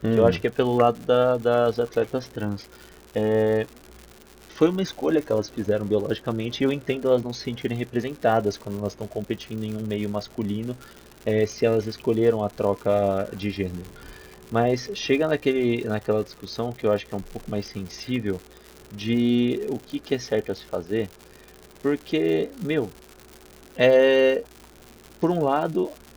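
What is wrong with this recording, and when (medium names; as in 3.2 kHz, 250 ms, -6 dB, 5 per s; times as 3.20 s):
crackle 160 per s -32 dBFS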